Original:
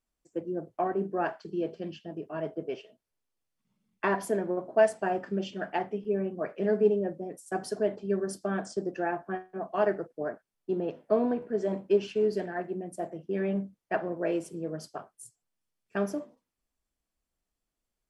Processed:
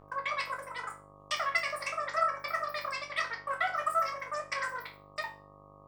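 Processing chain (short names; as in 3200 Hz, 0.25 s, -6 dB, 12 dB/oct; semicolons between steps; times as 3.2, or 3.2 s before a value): wide varispeed 3.08×; buzz 50 Hz, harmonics 25, -51 dBFS -2 dB/oct; resonator bank D2 major, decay 0.34 s; gain +8.5 dB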